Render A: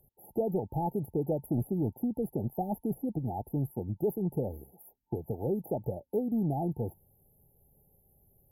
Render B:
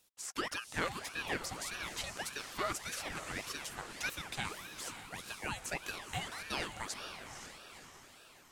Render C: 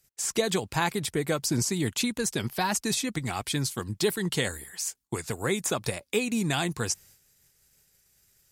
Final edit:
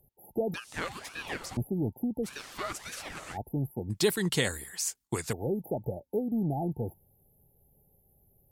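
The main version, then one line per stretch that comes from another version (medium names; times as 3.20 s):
A
0.54–1.57 s: from B
2.26–3.35 s: from B, crossfade 0.06 s
3.90–5.33 s: from C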